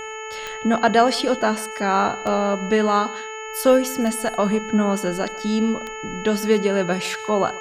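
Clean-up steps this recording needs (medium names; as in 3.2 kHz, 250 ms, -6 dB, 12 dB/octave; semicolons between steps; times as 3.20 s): de-click; de-hum 437 Hz, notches 7; band-stop 6.7 kHz, Q 30; inverse comb 144 ms -20.5 dB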